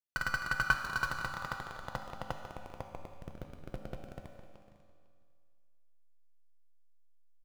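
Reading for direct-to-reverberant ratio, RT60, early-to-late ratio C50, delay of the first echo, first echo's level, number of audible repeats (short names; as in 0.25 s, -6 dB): 3.5 dB, 2.1 s, 5.5 dB, 0.502 s, -18.5 dB, 1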